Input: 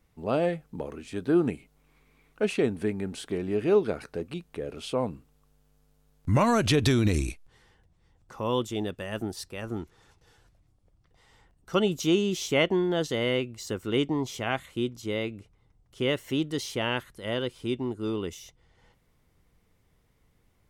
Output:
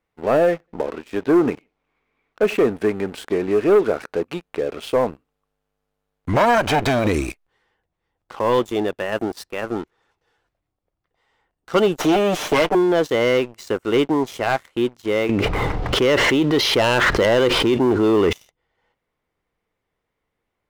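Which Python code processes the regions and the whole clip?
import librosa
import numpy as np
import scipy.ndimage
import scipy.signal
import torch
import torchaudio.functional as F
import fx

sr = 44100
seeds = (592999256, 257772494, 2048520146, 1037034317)

y = fx.chain(x, sr, fx.echo_feedback(ms=88, feedback_pct=37, wet_db=-23.0),
    fx.resample_linear(factor=3), at=(0.5, 2.68))
y = fx.chain(y, sr, fx.lower_of_two(delay_ms=1.3),
    fx.high_shelf(hz=7900.0, db=-6.5), at=(6.33, 7.07))
y = fx.chain(y, sr, fx.lower_of_two(delay_ms=6.6),
    fx.band_squash(depth_pct=70), at=(11.98, 12.75))
y = fx.chain(y, sr, fx.lowpass(hz=4800.0, slope=24),
    fx.env_flatten(amount_pct=100), at=(15.29, 18.33))
y = fx.bass_treble(y, sr, bass_db=-13, treble_db=-11)
y = fx.leveller(y, sr, passes=3)
y = fx.dynamic_eq(y, sr, hz=3300.0, q=1.0, threshold_db=-39.0, ratio=4.0, max_db=-4)
y = F.gain(torch.from_numpy(y), 2.0).numpy()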